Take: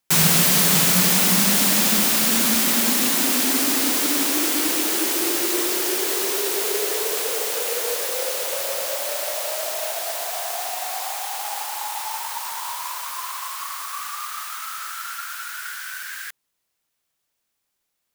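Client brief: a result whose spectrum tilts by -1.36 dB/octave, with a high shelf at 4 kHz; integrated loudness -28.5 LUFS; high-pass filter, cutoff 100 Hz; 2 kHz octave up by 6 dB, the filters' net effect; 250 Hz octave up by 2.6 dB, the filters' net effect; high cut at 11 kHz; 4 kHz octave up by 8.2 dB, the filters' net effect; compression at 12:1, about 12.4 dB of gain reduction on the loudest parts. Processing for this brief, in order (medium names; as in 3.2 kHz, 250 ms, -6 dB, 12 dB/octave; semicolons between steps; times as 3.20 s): high-pass 100 Hz; low-pass 11 kHz; peaking EQ 250 Hz +3.5 dB; peaking EQ 2 kHz +4.5 dB; treble shelf 4 kHz +5 dB; peaking EQ 4 kHz +6 dB; compression 12:1, threshold -23 dBFS; trim -3.5 dB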